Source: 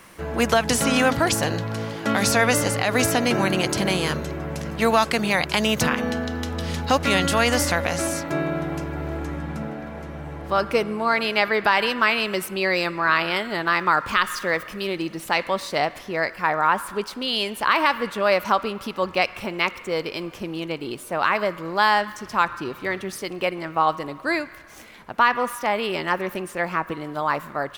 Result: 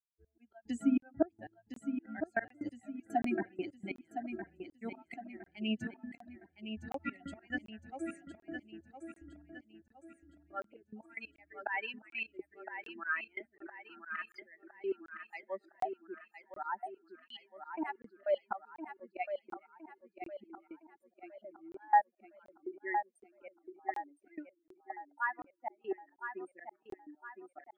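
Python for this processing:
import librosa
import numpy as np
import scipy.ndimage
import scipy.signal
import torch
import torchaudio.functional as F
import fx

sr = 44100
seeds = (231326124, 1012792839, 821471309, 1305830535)

p1 = fx.bin_expand(x, sr, power=3.0)
p2 = scipy.signal.sosfilt(scipy.signal.butter(2, 230.0, 'highpass', fs=sr, output='sos'), p1)
p3 = fx.auto_swell(p2, sr, attack_ms=179.0)
p4 = np.convolve(p3, np.full(8, 1.0 / 8))[:len(p3)]
p5 = fx.fixed_phaser(p4, sr, hz=730.0, stages=8)
p6 = fx.env_lowpass_down(p5, sr, base_hz=1200.0, full_db=-31.5)
p7 = fx.step_gate(p6, sr, bpm=184, pattern='..x.....xxxx..x', floor_db=-24.0, edge_ms=4.5)
p8 = p7 + fx.echo_feedback(p7, sr, ms=1012, feedback_pct=42, wet_db=-8.0, dry=0)
p9 = fx.buffer_crackle(p8, sr, first_s=1.0, period_s=0.74, block=1024, kind='zero')
y = p9 * 10.0 ** (4.5 / 20.0)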